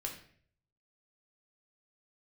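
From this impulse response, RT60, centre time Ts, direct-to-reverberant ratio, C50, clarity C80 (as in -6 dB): 0.55 s, 20 ms, 0.0 dB, 8.0 dB, 11.5 dB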